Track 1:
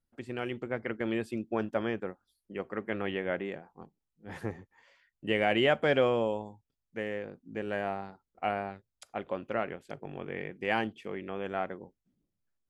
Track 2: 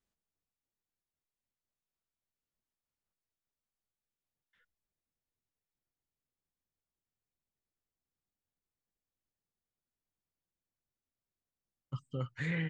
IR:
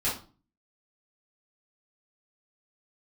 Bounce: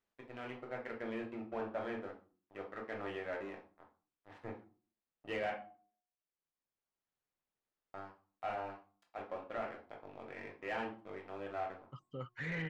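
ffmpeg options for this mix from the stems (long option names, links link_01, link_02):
-filter_complex "[0:a]aeval=exprs='sgn(val(0))*max(abs(val(0))-0.00794,0)':channel_layout=same,volume=-16dB,asplit=3[link_01][link_02][link_03];[link_01]atrim=end=5.5,asetpts=PTS-STARTPTS,afade=type=out:start_time=5.496:duration=0.004:curve=hsin[link_04];[link_02]atrim=start=5.5:end=7.94,asetpts=PTS-STARTPTS,volume=0[link_05];[link_03]atrim=start=7.94,asetpts=PTS-STARTPTS,afade=type=in:duration=0.004:curve=hsin[link_06];[link_04][link_05][link_06]concat=n=3:v=0:a=1,asplit=3[link_07][link_08][link_09];[link_08]volume=-7dB[link_10];[1:a]volume=-3dB[link_11];[link_09]apad=whole_len=559761[link_12];[link_11][link_12]sidechaincompress=threshold=-53dB:ratio=8:attack=16:release=1460[link_13];[2:a]atrim=start_sample=2205[link_14];[link_10][link_14]afir=irnorm=-1:irlink=0[link_15];[link_07][link_13][link_15]amix=inputs=3:normalize=0,bandreject=frequency=361.7:width_type=h:width=4,bandreject=frequency=723.4:width_type=h:width=4,bandreject=frequency=1085.1:width_type=h:width=4,asplit=2[link_16][link_17];[link_17]highpass=frequency=720:poles=1,volume=17dB,asoftclip=type=tanh:threshold=-25.5dB[link_18];[link_16][link_18]amix=inputs=2:normalize=0,lowpass=frequency=1200:poles=1,volume=-6dB"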